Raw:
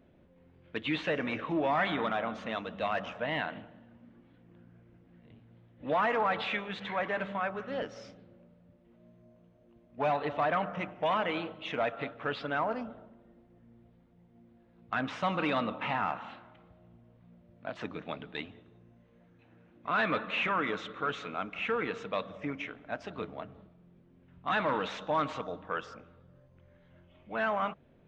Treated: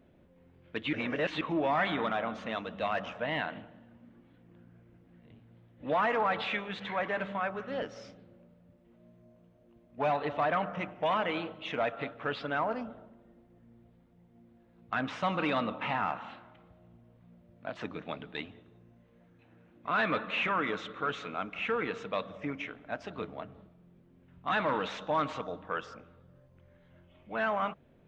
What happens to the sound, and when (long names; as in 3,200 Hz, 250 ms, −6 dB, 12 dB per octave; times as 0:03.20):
0:00.93–0:01.41: reverse